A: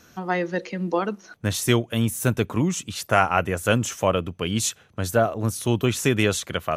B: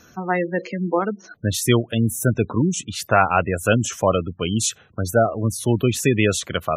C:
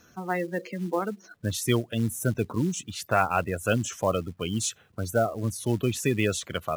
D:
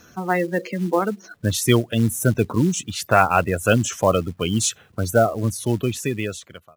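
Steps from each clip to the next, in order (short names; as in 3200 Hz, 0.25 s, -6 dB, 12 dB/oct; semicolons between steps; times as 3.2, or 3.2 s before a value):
spectral gate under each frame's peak -20 dB strong; gain +3 dB
companded quantiser 6-bit; gain -7 dB
ending faded out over 1.49 s; gain +7.5 dB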